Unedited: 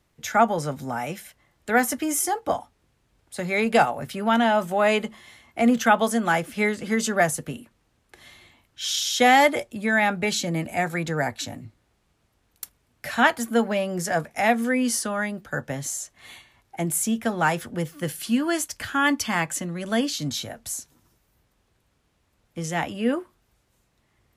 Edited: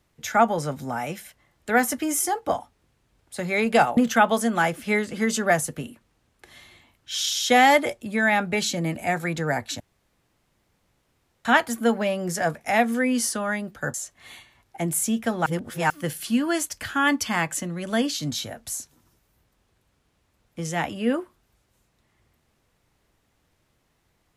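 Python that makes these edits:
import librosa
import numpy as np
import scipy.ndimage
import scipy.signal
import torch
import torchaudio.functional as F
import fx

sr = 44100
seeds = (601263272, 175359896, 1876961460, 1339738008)

y = fx.edit(x, sr, fx.cut(start_s=3.97, length_s=1.7),
    fx.room_tone_fill(start_s=11.5, length_s=1.65),
    fx.cut(start_s=15.64, length_s=0.29),
    fx.reverse_span(start_s=17.45, length_s=0.44), tone=tone)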